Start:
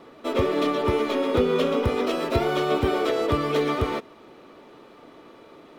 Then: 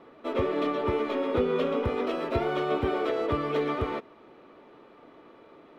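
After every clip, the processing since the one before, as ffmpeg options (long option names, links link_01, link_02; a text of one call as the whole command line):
ffmpeg -i in.wav -af "bass=frequency=250:gain=-2,treble=frequency=4000:gain=-13,volume=-4dB" out.wav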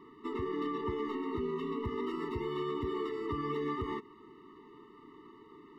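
ffmpeg -i in.wav -af "alimiter=level_in=1dB:limit=-24dB:level=0:latency=1:release=121,volume=-1dB,afftfilt=real='re*eq(mod(floor(b*sr/1024/440),2),0)':imag='im*eq(mod(floor(b*sr/1024/440),2),0)':win_size=1024:overlap=0.75" out.wav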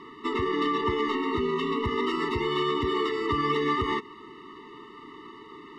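ffmpeg -i in.wav -af "adynamicsmooth=sensitivity=2:basefreq=4200,crystalizer=i=9.5:c=0,volume=6.5dB" out.wav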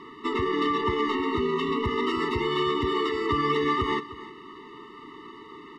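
ffmpeg -i in.wav -af "aecho=1:1:308:0.15,volume=1dB" out.wav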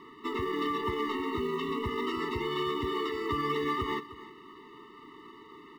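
ffmpeg -i in.wav -af "acrusher=bits=8:mode=log:mix=0:aa=0.000001,volume=-6dB" out.wav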